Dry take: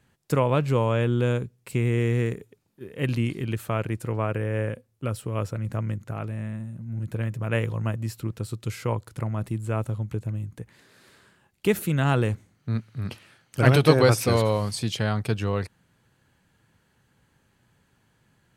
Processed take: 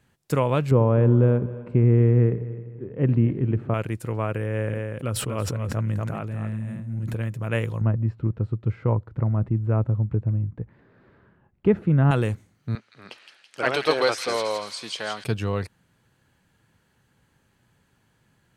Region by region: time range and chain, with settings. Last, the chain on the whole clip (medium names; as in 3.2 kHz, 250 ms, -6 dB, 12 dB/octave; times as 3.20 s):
0.71–3.74 s: low-pass 1.6 kHz + tilt shelf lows +6 dB + multi-head delay 84 ms, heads first and third, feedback 54%, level -18 dB
4.46–7.14 s: treble shelf 6 kHz -4.5 dB + delay 240 ms -7 dB + decay stretcher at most 25 dB/s
7.81–12.11 s: low-pass 1.6 kHz + tilt EQ -2 dB/octave
12.75–15.24 s: band-pass 480–6200 Hz + feedback echo behind a high-pass 165 ms, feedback 59%, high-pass 2.8 kHz, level -4 dB
whole clip: none